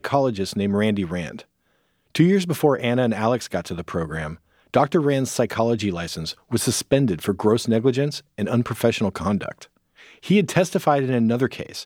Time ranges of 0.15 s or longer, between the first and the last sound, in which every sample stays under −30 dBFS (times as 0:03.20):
0:01.41–0:02.15
0:04.34–0:04.74
0:06.32–0:06.52
0:08.19–0:08.38
0:09.63–0:10.25